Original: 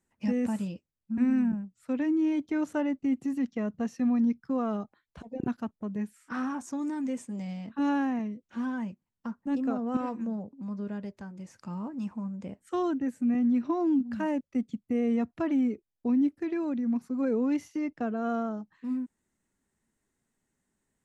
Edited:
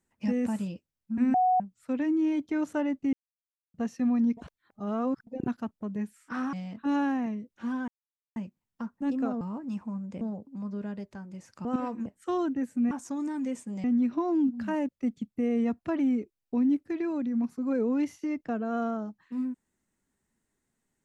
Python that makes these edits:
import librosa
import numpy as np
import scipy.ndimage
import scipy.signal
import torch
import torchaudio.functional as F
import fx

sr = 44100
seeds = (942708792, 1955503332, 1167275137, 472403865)

y = fx.edit(x, sr, fx.bleep(start_s=1.34, length_s=0.26, hz=738.0, db=-20.0),
    fx.silence(start_s=3.13, length_s=0.61),
    fx.reverse_span(start_s=4.37, length_s=0.9),
    fx.move(start_s=6.53, length_s=0.93, to_s=13.36),
    fx.insert_silence(at_s=8.81, length_s=0.48),
    fx.swap(start_s=9.86, length_s=0.41, other_s=11.71, other_length_s=0.8), tone=tone)